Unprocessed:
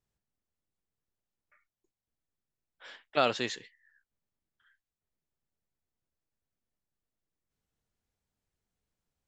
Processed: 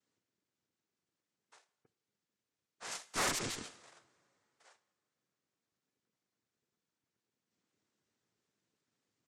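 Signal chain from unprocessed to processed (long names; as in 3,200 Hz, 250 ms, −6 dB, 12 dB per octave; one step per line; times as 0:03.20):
comb filter 3.4 ms
cochlear-implant simulation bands 3
coupled-rooms reverb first 0.77 s, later 3.1 s, from −26 dB, DRR 16 dB
tube saturation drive 29 dB, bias 0.75
brickwall limiter −36.5 dBFS, peak gain reduction 11 dB
0:02.91–0:03.39: high-shelf EQ 3,500 Hz +7 dB
gate on every frequency bin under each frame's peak −25 dB strong
level +7.5 dB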